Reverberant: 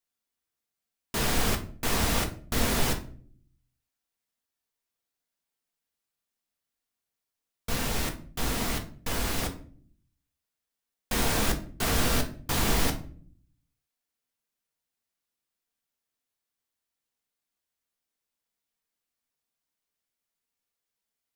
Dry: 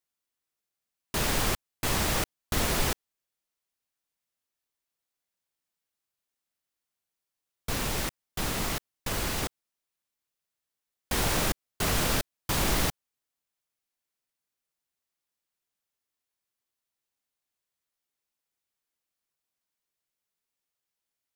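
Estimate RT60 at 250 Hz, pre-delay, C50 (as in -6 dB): no reading, 4 ms, 12.0 dB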